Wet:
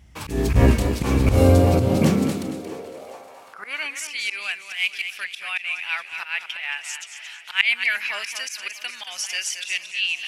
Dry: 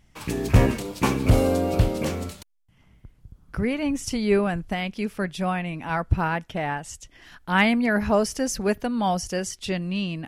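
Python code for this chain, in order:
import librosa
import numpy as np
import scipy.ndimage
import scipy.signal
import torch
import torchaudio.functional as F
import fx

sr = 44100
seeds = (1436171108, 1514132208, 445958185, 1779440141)

y = fx.cvsd(x, sr, bps=64000, at=(4.63, 5.04))
y = fx.echo_swing(y, sr, ms=1053, ratio=1.5, feedback_pct=45, wet_db=-19.5)
y = fx.filter_sweep_highpass(y, sr, from_hz=63.0, to_hz=2500.0, start_s=1.26, end_s=4.19, q=3.7)
y = fx.auto_swell(y, sr, attack_ms=125.0)
y = fx.echo_warbled(y, sr, ms=226, feedback_pct=31, rate_hz=2.8, cents=58, wet_db=-9.0)
y = y * 10.0 ** (4.5 / 20.0)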